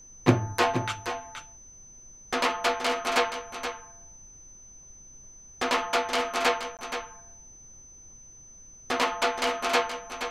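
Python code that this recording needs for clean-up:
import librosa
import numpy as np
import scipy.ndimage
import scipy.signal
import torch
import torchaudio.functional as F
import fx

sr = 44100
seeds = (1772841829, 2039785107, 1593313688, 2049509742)

y = fx.notch(x, sr, hz=6100.0, q=30.0)
y = fx.fix_interpolate(y, sr, at_s=(6.77,), length_ms=18.0)
y = fx.noise_reduce(y, sr, print_start_s=8.09, print_end_s=8.59, reduce_db=23.0)
y = fx.fix_echo_inverse(y, sr, delay_ms=474, level_db=-9.0)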